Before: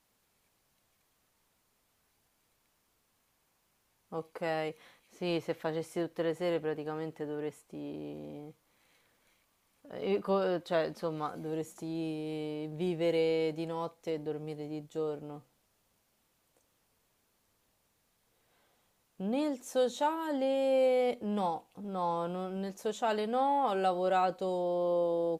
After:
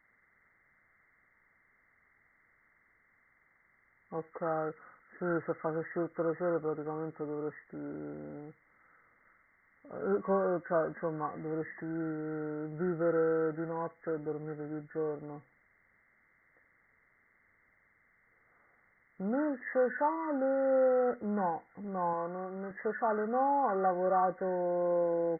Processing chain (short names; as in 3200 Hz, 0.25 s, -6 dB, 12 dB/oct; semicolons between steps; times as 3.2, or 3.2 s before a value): nonlinear frequency compression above 1100 Hz 4:1; 22.13–22.71 low shelf 170 Hz -12 dB